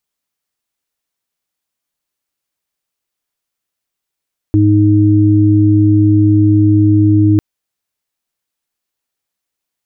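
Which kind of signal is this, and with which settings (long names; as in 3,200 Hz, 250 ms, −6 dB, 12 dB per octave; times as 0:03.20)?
steady harmonic partials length 2.85 s, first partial 104 Hz, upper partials −19.5/0 dB, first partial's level −9 dB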